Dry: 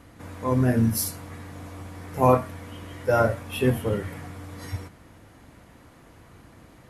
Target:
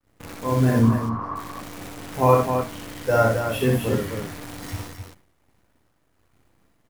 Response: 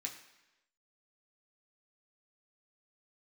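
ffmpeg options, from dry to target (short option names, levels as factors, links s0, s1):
-filter_complex "[0:a]acrusher=bits=7:dc=4:mix=0:aa=0.000001,asplit=3[s0][s1][s2];[s0]afade=t=out:st=0.82:d=0.02[s3];[s1]lowpass=f=1100:t=q:w=13,afade=t=in:st=0.82:d=0.02,afade=t=out:st=1.35:d=0.02[s4];[s2]afade=t=in:st=1.35:d=0.02[s5];[s3][s4][s5]amix=inputs=3:normalize=0,agate=range=0.0224:threshold=0.00794:ratio=3:detection=peak,aecho=1:1:61.22|262.4:0.708|0.501"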